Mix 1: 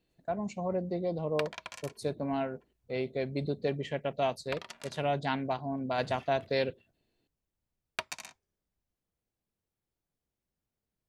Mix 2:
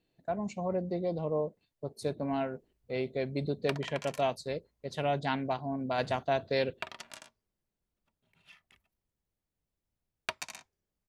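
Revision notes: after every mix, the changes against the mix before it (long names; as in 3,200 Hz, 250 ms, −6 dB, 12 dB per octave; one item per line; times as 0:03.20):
background: entry +2.30 s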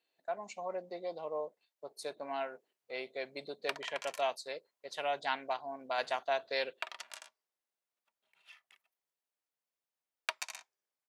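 master: add high-pass filter 710 Hz 12 dB per octave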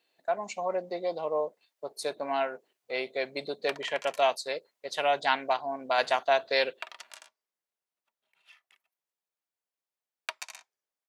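speech +8.5 dB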